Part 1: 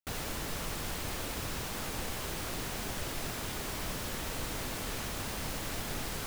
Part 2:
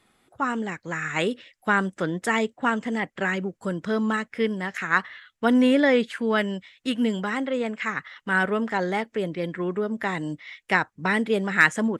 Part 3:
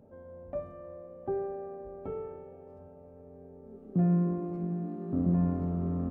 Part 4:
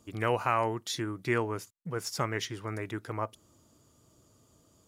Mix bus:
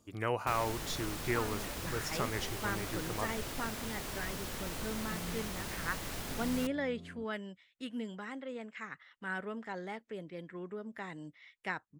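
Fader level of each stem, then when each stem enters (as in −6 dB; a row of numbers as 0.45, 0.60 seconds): −3.5, −16.0, −19.5, −5.0 decibels; 0.40, 0.95, 1.15, 0.00 seconds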